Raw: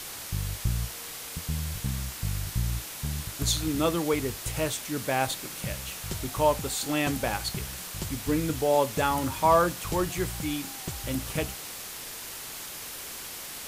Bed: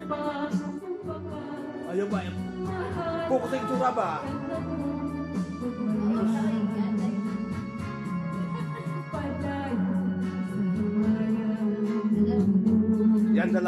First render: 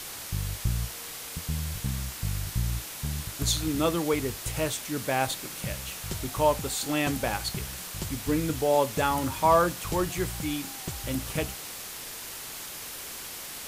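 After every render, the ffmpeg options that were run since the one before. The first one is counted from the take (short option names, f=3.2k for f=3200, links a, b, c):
-af anull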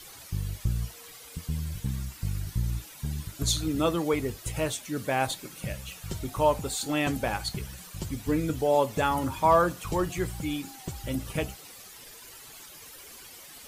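-af "afftdn=nr=12:nf=-40"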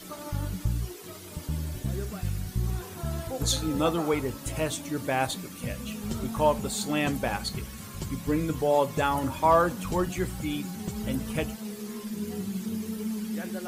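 -filter_complex "[1:a]volume=-10.5dB[a];[0:a][a]amix=inputs=2:normalize=0"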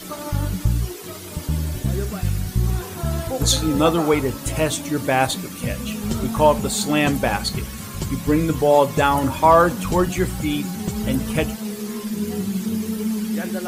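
-af "volume=8.5dB,alimiter=limit=-3dB:level=0:latency=1"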